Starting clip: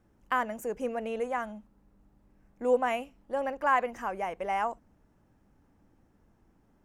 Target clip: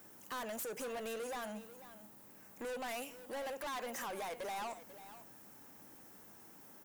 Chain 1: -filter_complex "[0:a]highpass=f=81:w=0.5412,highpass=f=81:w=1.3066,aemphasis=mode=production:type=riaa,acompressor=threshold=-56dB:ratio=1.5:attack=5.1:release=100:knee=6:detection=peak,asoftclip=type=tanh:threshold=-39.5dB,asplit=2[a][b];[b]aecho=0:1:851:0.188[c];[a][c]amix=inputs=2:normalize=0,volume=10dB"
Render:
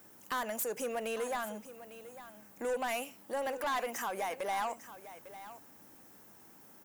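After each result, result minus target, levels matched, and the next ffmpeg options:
echo 0.359 s late; soft clip: distortion -5 dB
-filter_complex "[0:a]highpass=f=81:w=0.5412,highpass=f=81:w=1.3066,aemphasis=mode=production:type=riaa,acompressor=threshold=-56dB:ratio=1.5:attack=5.1:release=100:knee=6:detection=peak,asoftclip=type=tanh:threshold=-39.5dB,asplit=2[a][b];[b]aecho=0:1:492:0.188[c];[a][c]amix=inputs=2:normalize=0,volume=10dB"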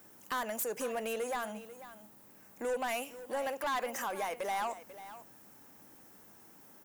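soft clip: distortion -5 dB
-filter_complex "[0:a]highpass=f=81:w=0.5412,highpass=f=81:w=1.3066,aemphasis=mode=production:type=riaa,acompressor=threshold=-56dB:ratio=1.5:attack=5.1:release=100:knee=6:detection=peak,asoftclip=type=tanh:threshold=-49.5dB,asplit=2[a][b];[b]aecho=0:1:492:0.188[c];[a][c]amix=inputs=2:normalize=0,volume=10dB"

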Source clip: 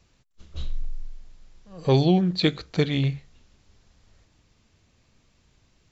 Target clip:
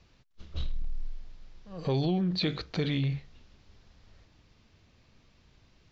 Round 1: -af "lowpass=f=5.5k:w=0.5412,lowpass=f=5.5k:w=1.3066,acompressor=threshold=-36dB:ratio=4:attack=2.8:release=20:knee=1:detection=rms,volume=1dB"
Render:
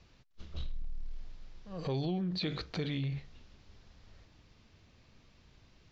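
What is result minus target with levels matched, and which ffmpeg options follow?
compressor: peak gain reduction +6 dB
-af "lowpass=f=5.5k:w=0.5412,lowpass=f=5.5k:w=1.3066,acompressor=threshold=-28dB:ratio=4:attack=2.8:release=20:knee=1:detection=rms,volume=1dB"

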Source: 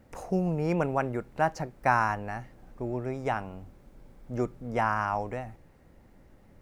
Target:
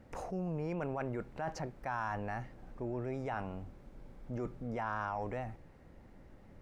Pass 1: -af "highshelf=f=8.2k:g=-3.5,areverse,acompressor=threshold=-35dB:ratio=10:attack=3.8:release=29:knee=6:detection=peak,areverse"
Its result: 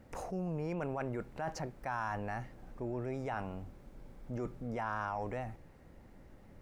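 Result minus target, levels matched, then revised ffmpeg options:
8000 Hz band +3.0 dB
-af "highshelf=f=8.2k:g=-12,areverse,acompressor=threshold=-35dB:ratio=10:attack=3.8:release=29:knee=6:detection=peak,areverse"

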